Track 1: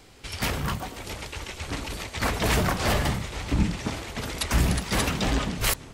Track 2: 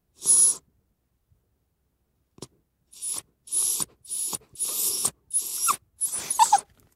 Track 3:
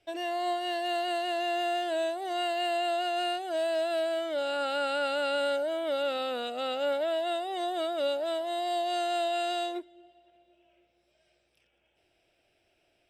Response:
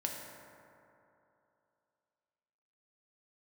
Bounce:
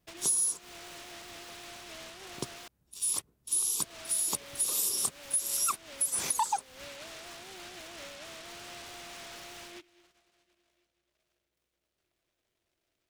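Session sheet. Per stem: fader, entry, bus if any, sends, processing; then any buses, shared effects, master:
muted
+0.5 dB, 0.00 s, no send, leveller curve on the samples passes 1
−9.0 dB, 0.00 s, muted 0:02.68–0:03.81, no send, downward compressor, threshold −34 dBFS, peak gain reduction 8 dB; parametric band 4,700 Hz −10 dB 1.7 octaves; short delay modulated by noise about 2,400 Hz, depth 0.3 ms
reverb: not used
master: downward compressor 8 to 1, threshold −27 dBFS, peak gain reduction 16.5 dB

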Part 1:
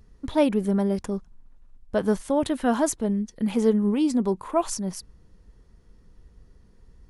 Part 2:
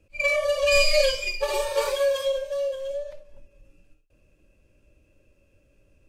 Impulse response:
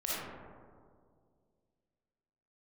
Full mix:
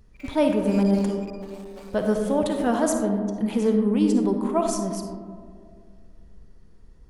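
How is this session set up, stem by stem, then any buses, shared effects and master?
−3.5 dB, 0.00 s, send −6.5 dB, no processing
0:02.10 −20.5 dB → 0:02.50 −14 dB, 0.00 s, no send, sub-harmonics by changed cycles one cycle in 3, muted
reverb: on, RT60 2.1 s, pre-delay 15 ms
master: no processing

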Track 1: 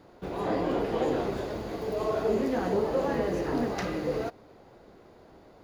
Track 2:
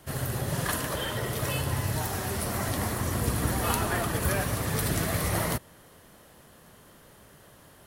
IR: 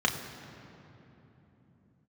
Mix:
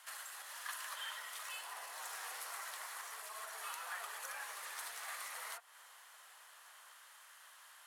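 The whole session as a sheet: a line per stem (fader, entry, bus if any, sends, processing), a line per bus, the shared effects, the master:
−3.5 dB, 1.30 s, no send, downward compressor 2 to 1, threshold −40 dBFS, peak gain reduction 10 dB; Gaussian smoothing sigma 2.6 samples
−0.5 dB, 0.00 s, no send, downward compressor 10 to 1, threshold −36 dBFS, peak gain reduction 15 dB; soft clipping −25.5 dBFS, distortion −30 dB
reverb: not used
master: high-pass filter 1,000 Hz 24 dB per octave; linearly interpolated sample-rate reduction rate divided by 2×

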